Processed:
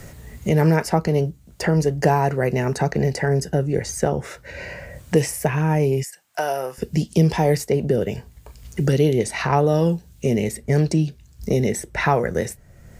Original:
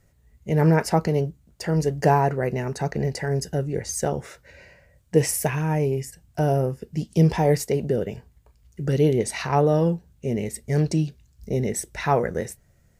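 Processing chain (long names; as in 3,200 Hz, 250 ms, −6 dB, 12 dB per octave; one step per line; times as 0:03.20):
0:06.03–0:06.78: high-pass filter 910 Hz 12 dB per octave
multiband upward and downward compressor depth 70%
level +3 dB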